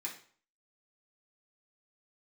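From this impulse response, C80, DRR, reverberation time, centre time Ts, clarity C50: 13.0 dB, -4.5 dB, 0.50 s, 20 ms, 8.5 dB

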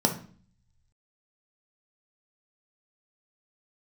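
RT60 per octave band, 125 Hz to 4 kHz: 1.3, 0.75, 0.45, 0.45, 0.40, 0.40 s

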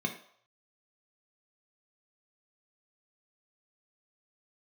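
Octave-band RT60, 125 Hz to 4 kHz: 0.40, 0.35, 0.60, 0.70, 0.55, 0.55 s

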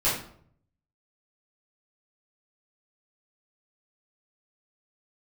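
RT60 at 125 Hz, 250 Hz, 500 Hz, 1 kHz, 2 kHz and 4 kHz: 1.0, 0.70, 0.65, 0.55, 0.45, 0.40 s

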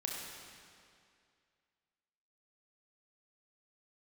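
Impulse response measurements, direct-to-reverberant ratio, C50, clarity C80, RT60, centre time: -2.0 dB, 0.0 dB, 1.5 dB, 2.3 s, 0.111 s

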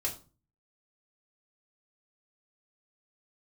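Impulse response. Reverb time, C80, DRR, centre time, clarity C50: 0.35 s, 17.0 dB, -3.0 dB, 15 ms, 12.0 dB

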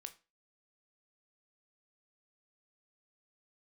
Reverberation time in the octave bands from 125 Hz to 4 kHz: 0.30, 0.30, 0.30, 0.30, 0.30, 0.25 s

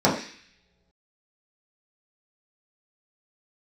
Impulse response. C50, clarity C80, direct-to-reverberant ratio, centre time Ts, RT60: 7.0 dB, 10.0 dB, -7.0 dB, 30 ms, not exponential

